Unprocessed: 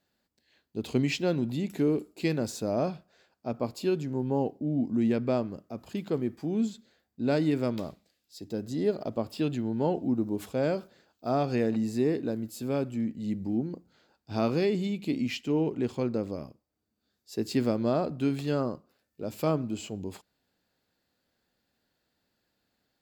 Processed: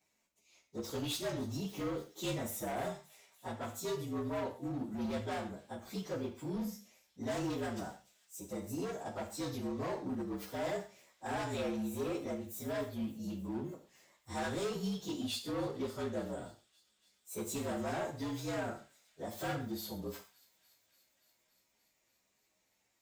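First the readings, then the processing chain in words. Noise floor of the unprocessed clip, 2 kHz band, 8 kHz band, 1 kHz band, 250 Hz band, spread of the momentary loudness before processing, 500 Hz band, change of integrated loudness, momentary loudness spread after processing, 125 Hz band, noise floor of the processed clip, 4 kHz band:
-80 dBFS, -4.0 dB, +1.0 dB, -4.5 dB, -10.5 dB, 11 LU, -9.0 dB, -9.5 dB, 9 LU, -10.0 dB, -78 dBFS, -3.0 dB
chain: frequency axis rescaled in octaves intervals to 116%; bass shelf 490 Hz -11 dB; in parallel at 0 dB: compression, threshold -48 dBFS, peak gain reduction 17.5 dB; on the sum: hard clipper -34 dBFS, distortion -9 dB; on a send: feedback echo behind a high-pass 288 ms, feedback 77%, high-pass 3.1 kHz, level -20.5 dB; on the sum: gated-style reverb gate 160 ms falling, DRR 4.5 dB; trim -1 dB

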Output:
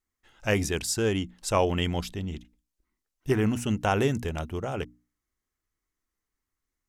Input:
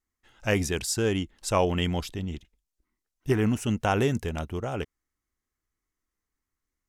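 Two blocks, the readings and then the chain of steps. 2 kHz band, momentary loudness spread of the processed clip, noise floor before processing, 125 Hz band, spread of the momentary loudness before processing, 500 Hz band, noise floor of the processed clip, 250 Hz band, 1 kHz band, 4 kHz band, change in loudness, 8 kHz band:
0.0 dB, 11 LU, under -85 dBFS, -0.5 dB, 11 LU, 0.0 dB, under -85 dBFS, -0.5 dB, 0.0 dB, 0.0 dB, -0.5 dB, 0.0 dB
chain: hum notches 60/120/180/240/300 Hz

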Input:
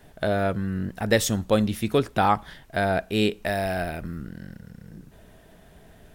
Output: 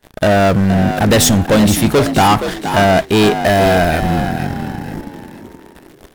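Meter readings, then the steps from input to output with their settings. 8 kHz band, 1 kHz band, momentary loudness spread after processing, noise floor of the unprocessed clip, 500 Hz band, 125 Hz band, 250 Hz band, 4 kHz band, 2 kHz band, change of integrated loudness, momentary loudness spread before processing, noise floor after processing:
+15.0 dB, +12.5 dB, 12 LU, -52 dBFS, +11.5 dB, +13.5 dB, +13.5 dB, +13.5 dB, +11.5 dB, +12.0 dB, 16 LU, -43 dBFS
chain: waveshaping leveller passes 5; frequency-shifting echo 471 ms, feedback 34%, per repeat +60 Hz, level -9 dB

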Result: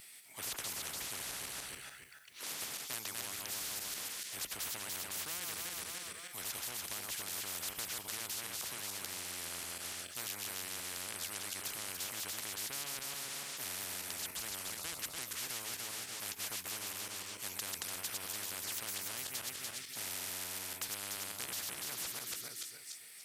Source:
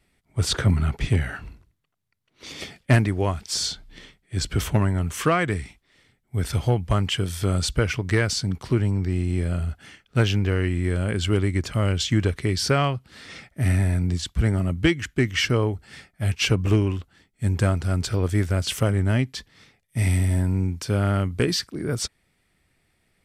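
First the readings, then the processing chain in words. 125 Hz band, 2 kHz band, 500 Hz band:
-37.0 dB, -14.0 dB, -25.0 dB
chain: backward echo that repeats 146 ms, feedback 48%, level -6 dB; differentiator; spectrum-flattening compressor 10:1

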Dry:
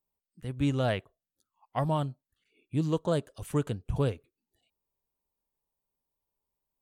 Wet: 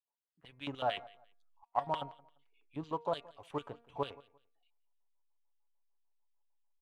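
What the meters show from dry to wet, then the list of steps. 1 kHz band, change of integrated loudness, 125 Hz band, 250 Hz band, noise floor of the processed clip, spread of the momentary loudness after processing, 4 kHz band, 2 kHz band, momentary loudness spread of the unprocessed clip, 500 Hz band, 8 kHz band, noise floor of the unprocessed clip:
0.0 dB, -8.5 dB, -20.0 dB, -14.5 dB, under -85 dBFS, 12 LU, -2.5 dB, -6.0 dB, 9 LU, -7.5 dB, under -15 dB, under -85 dBFS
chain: LFO band-pass square 6.7 Hz 890–3200 Hz; treble shelf 3.3 kHz -8 dB; comb 7.1 ms, depth 36%; in parallel at -7 dB: hysteresis with a dead band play -46.5 dBFS; on the sum: de-hum 234.6 Hz, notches 11; on a send: feedback delay 173 ms, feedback 25%, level -22 dB; on the sum: trim +1 dB

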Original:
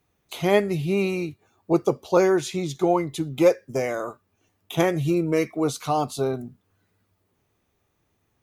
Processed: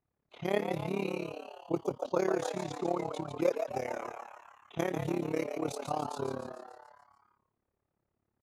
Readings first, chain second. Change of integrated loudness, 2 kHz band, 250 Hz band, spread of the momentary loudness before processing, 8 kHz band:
-11.0 dB, -10.5 dB, -11.5 dB, 11 LU, -11.5 dB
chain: level-controlled noise filter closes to 1.5 kHz, open at -20.5 dBFS; frequency-shifting echo 145 ms, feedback 57%, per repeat +120 Hz, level -7 dB; AM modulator 35 Hz, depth 80%; trim -8 dB

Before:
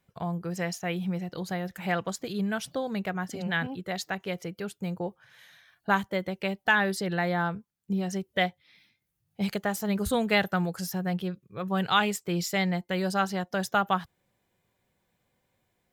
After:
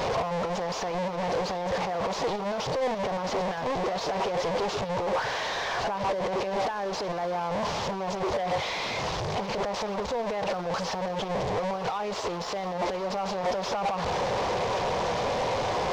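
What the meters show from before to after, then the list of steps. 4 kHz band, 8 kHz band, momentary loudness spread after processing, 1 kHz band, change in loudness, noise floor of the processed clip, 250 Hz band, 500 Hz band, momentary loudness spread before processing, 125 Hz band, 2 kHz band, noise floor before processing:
+1.5 dB, -0.5 dB, 3 LU, +4.0 dB, 0.0 dB, -33 dBFS, -5.0 dB, +5.5 dB, 9 LU, -3.5 dB, -4.0 dB, -77 dBFS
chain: one-bit delta coder 32 kbps, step -23.5 dBFS; peak limiter -33.5 dBFS, peak gain reduction 23 dB; high-order bell 680 Hz +13.5 dB; waveshaping leveller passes 2; loudspeaker Doppler distortion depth 0.13 ms; trim -3.5 dB

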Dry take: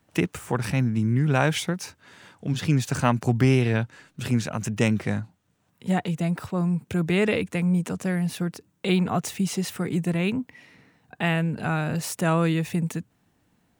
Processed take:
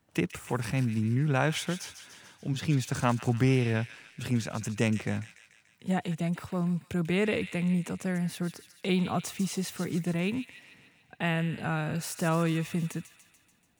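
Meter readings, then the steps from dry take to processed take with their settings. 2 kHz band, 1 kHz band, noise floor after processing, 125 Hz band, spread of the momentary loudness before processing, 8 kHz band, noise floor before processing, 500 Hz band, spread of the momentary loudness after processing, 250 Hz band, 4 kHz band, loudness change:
-4.5 dB, -5.0 dB, -65 dBFS, -5.0 dB, 10 LU, -4.0 dB, -68 dBFS, -5.0 dB, 10 LU, -5.0 dB, -4.5 dB, -5.0 dB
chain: feedback echo behind a high-pass 145 ms, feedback 60%, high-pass 2.2 kHz, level -8.5 dB; trim -5 dB

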